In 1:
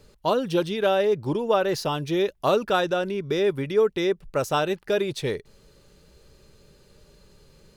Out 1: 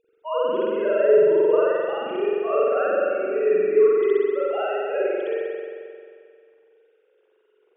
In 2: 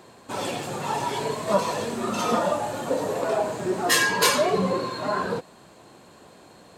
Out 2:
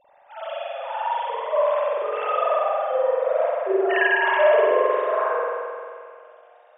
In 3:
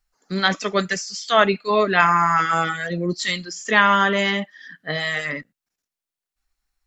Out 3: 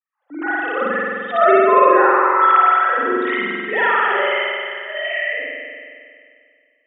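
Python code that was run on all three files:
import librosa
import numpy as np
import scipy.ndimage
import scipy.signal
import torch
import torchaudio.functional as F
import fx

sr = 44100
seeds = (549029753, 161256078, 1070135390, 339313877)

y = fx.sine_speech(x, sr)
y = fx.rev_spring(y, sr, rt60_s=2.2, pass_ms=(44,), chirp_ms=30, drr_db=-9.5)
y = y * librosa.db_to_amplitude(-6.5)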